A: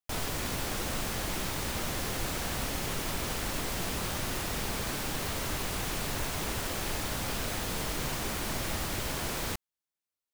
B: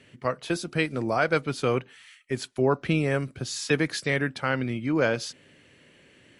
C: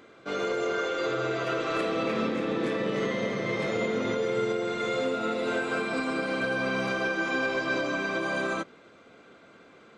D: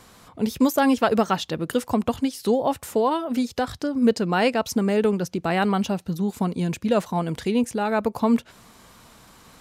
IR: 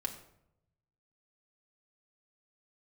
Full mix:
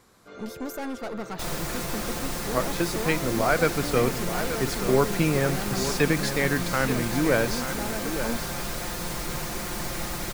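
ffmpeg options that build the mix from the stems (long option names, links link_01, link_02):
-filter_complex "[0:a]aecho=1:1:5.7:0.55,adelay=1300,volume=1dB[link_01];[1:a]adelay=2300,volume=1dB,asplit=2[link_02][link_03];[link_03]volume=-10dB[link_04];[2:a]volume=-13.5dB[link_05];[3:a]aeval=exprs='(tanh(15.8*val(0)+0.55)-tanh(0.55))/15.8':channel_layout=same,volume=-6.5dB[link_06];[link_04]aecho=0:1:879:1[link_07];[link_01][link_02][link_05][link_06][link_07]amix=inputs=5:normalize=0,equalizer=frequency=3000:width=2.6:gain=-4.5"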